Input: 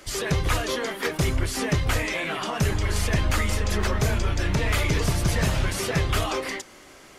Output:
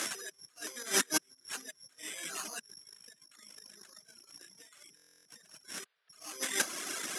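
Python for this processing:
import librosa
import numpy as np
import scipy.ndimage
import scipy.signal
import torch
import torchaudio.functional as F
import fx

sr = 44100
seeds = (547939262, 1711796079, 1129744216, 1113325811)

y = (np.kron(x[::8], np.eye(8)[0]) * 8)[:len(x)]
y = fx.spec_paint(y, sr, seeds[0], shape='noise', start_s=5.85, length_s=0.24, low_hz=390.0, high_hz=5000.0, level_db=-4.0)
y = fx.over_compress(y, sr, threshold_db=-28.0, ratio=-0.5)
y = fx.dereverb_blind(y, sr, rt60_s=1.8)
y = fx.cabinet(y, sr, low_hz=190.0, low_slope=24, high_hz=10000.0, hz=(540.0, 860.0, 1600.0, 4500.0), db=(-3, -5, 7, -7))
y = fx.buffer_glitch(y, sr, at_s=(4.95,), block=1024, repeats=12)
y = F.gain(torch.from_numpy(y), -6.5).numpy()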